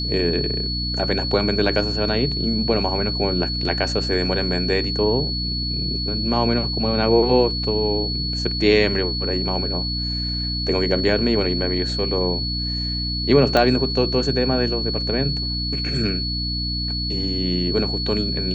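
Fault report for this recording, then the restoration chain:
hum 60 Hz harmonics 5 -27 dBFS
tone 4400 Hz -25 dBFS
13.57 pop -6 dBFS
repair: de-click; de-hum 60 Hz, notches 5; notch 4400 Hz, Q 30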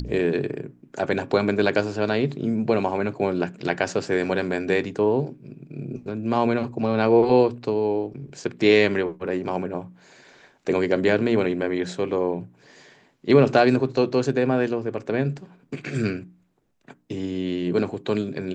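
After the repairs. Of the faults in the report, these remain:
none

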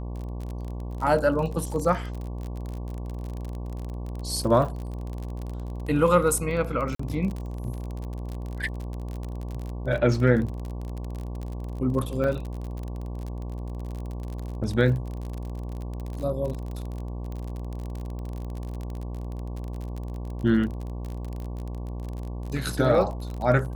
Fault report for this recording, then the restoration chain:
buzz 60 Hz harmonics 19 -33 dBFS
crackle 36/s -31 dBFS
6.95–6.99 gap 44 ms
12.24 gap 3.4 ms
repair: de-click; de-hum 60 Hz, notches 19; interpolate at 6.95, 44 ms; interpolate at 12.24, 3.4 ms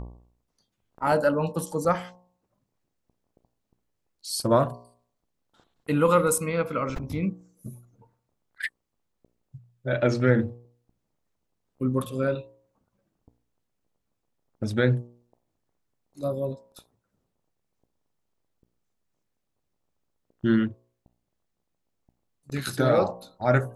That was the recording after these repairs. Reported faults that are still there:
none

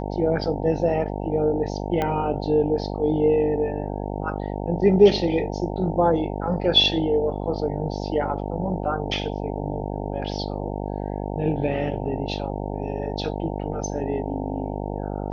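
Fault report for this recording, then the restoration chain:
buzz 50 Hz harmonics 18 -29 dBFS
2.02 pop -12 dBFS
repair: de-click; de-hum 50 Hz, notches 18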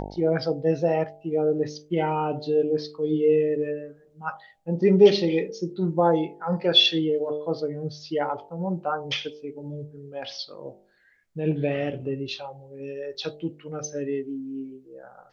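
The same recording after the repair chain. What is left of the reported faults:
2.02 pop

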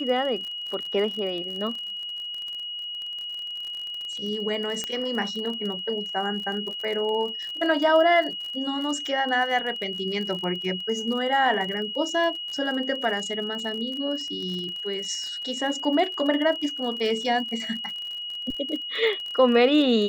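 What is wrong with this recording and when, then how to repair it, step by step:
crackle 41/s -32 dBFS
tone 2900 Hz -31 dBFS
4.84 pop -14 dBFS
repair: de-click; notch 2900 Hz, Q 30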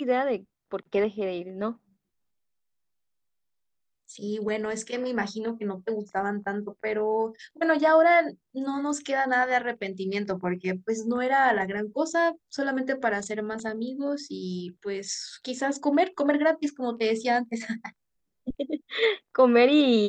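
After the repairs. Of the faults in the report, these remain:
none

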